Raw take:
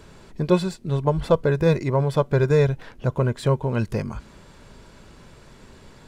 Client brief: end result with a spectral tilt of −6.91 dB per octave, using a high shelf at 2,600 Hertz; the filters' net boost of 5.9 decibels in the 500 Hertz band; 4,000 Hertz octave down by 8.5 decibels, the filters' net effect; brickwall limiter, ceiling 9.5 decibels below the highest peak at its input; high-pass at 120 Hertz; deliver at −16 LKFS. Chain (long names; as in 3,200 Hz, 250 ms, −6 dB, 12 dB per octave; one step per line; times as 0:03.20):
high-pass filter 120 Hz
parametric band 500 Hz +7 dB
high-shelf EQ 2,600 Hz −4.5 dB
parametric band 4,000 Hz −6.5 dB
level +6 dB
brickwall limiter −3 dBFS